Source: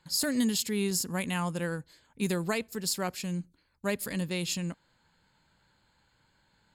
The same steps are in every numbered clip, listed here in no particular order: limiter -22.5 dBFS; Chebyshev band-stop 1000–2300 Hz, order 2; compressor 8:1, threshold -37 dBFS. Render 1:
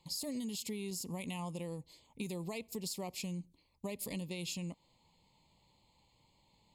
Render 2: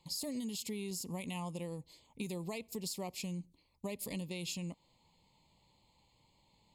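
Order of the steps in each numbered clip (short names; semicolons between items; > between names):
limiter > Chebyshev band-stop > compressor; Chebyshev band-stop > limiter > compressor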